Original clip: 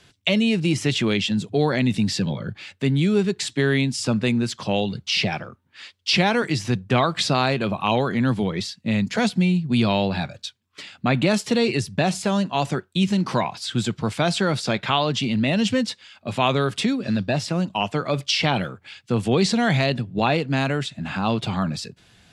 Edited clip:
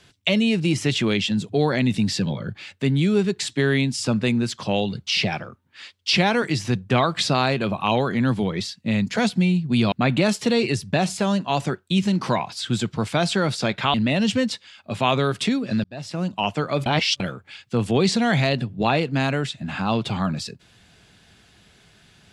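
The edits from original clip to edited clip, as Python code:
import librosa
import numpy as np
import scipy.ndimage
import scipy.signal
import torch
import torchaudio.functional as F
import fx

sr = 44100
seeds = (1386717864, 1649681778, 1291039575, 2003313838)

y = fx.edit(x, sr, fx.cut(start_s=9.92, length_s=1.05),
    fx.cut(start_s=14.99, length_s=0.32),
    fx.fade_in_span(start_s=17.21, length_s=0.51),
    fx.reverse_span(start_s=18.23, length_s=0.34), tone=tone)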